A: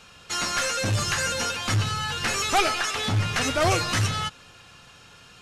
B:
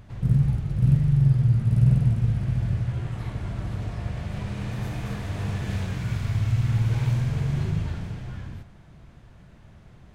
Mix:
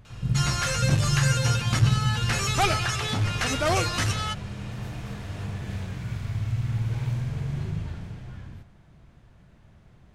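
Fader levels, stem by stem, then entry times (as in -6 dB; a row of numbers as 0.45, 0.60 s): -2.0, -4.5 dB; 0.05, 0.00 s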